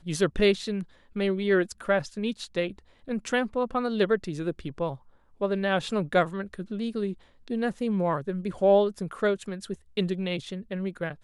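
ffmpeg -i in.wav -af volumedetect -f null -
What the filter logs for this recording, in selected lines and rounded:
mean_volume: -27.8 dB
max_volume: -10.9 dB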